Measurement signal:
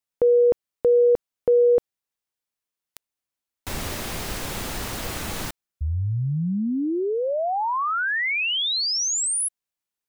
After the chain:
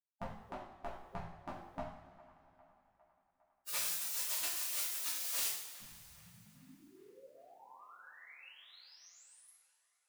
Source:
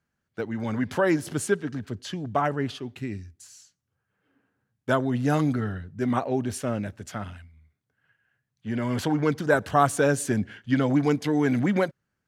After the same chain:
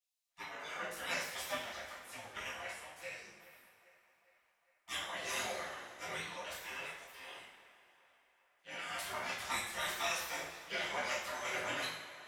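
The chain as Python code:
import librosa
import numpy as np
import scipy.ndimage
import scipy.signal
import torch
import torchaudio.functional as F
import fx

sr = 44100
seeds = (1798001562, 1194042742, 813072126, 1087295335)

p1 = fx.spec_gate(x, sr, threshold_db=-25, keep='weak')
p2 = fx.chorus_voices(p1, sr, voices=6, hz=0.61, base_ms=15, depth_ms=4.5, mix_pct=45)
p3 = p2 + fx.echo_wet_bandpass(p2, sr, ms=405, feedback_pct=60, hz=1100.0, wet_db=-17, dry=0)
y = fx.rev_double_slope(p3, sr, seeds[0], early_s=0.6, late_s=3.0, knee_db=-16, drr_db=-6.5)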